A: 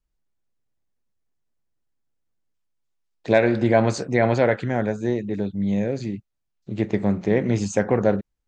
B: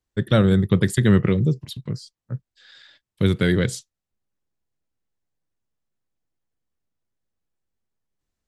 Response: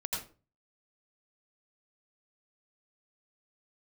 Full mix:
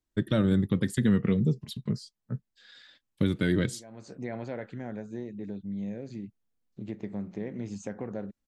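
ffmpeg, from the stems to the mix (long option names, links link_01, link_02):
-filter_complex "[0:a]acompressor=threshold=-32dB:ratio=2,adelay=100,volume=-10dB[link_01];[1:a]flanger=delay=3.1:depth=1.7:regen=52:speed=0.26:shape=sinusoidal,volume=-0.5dB,asplit=2[link_02][link_03];[link_03]apad=whole_len=378077[link_04];[link_01][link_04]sidechaincompress=threshold=-43dB:ratio=5:attack=6.1:release=352[link_05];[link_05][link_02]amix=inputs=2:normalize=0,equalizer=frequency=220:width=1.1:gain=5.5,alimiter=limit=-15dB:level=0:latency=1:release=454"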